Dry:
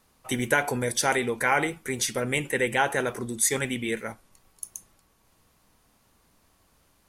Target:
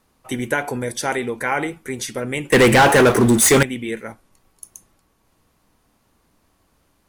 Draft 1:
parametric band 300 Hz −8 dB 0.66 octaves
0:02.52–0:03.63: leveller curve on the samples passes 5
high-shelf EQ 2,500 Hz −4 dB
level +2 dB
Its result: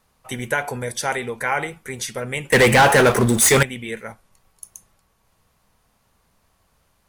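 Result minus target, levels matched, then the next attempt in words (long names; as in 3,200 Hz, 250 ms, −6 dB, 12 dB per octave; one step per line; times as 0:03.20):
250 Hz band −4.0 dB
parametric band 300 Hz +3 dB 0.66 octaves
0:02.52–0:03.63: leveller curve on the samples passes 5
high-shelf EQ 2,500 Hz −4 dB
level +2 dB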